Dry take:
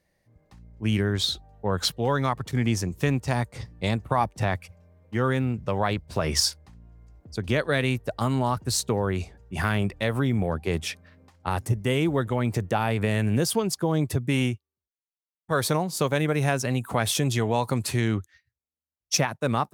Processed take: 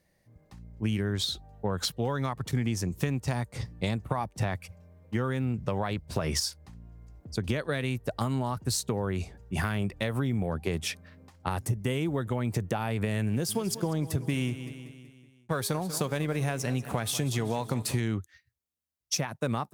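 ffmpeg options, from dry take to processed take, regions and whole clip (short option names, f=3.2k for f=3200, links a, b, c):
-filter_complex "[0:a]asettb=1/sr,asplit=3[a][b][c];[a]atrim=end=13.304[d];[b]atrim=start=13.3:end=18,asetpts=PTS-STARTPTS,afade=t=in:d=0.004:c=qsin,afade=t=out:st=4.696:d=0.004:c=qsin,bandreject=f=408.9:t=h:w=4,bandreject=f=817.8:t=h:w=4,bandreject=f=1.2267k:t=h:w=4,bandreject=f=1.6356k:t=h:w=4,bandreject=f=2.0445k:t=h:w=4,bandreject=f=2.4534k:t=h:w=4,bandreject=f=2.8623k:t=h:w=4,bandreject=f=3.2712k:t=h:w=4,bandreject=f=3.6801k:t=h:w=4,bandreject=f=4.089k:t=h:w=4,bandreject=f=4.4979k:t=h:w=4,bandreject=f=4.9068k:t=h:w=4,bandreject=f=5.3157k:t=h:w=4,bandreject=f=5.7246k:t=h:w=4,bandreject=f=6.1335k:t=h:w=4,bandreject=f=6.5424k:t=h:w=4,bandreject=f=6.9513k:t=h:w=4,bandreject=f=7.3602k:t=h:w=4,bandreject=f=7.7691k:t=h:w=4,bandreject=f=8.178k:t=h:w=4,bandreject=f=8.5869k:t=h:w=4,bandreject=f=8.9958k:t=h:w=4,bandreject=f=9.4047k:t=h:w=4,bandreject=f=9.8136k:t=h:w=4,bandreject=f=10.2225k:t=h:w=4,bandreject=f=10.6314k:t=h:w=4,bandreject=f=11.0403k:t=h:w=4,bandreject=f=11.4492k:t=h:w=4,bandreject=f=11.8581k:t=h:w=4,bandreject=f=12.267k:t=h:w=4,bandreject=f=12.6759k:t=h:w=4,aeval=exprs='sgn(val(0))*max(abs(val(0))-0.00473,0)':c=same,aecho=1:1:189|378|567|756|945:0.15|0.0778|0.0405|0.021|0.0109,atrim=end_sample=207270[e];[c]atrim=start=17.996[f];[d][e]acrossfade=d=0.004:c1=hsin:c2=qsin[g];[g][f]acrossfade=d=0.004:c1=qsin:c2=hsin,highshelf=f=6.6k:g=4,acompressor=threshold=-27dB:ratio=6,equalizer=f=160:t=o:w=1.9:g=3"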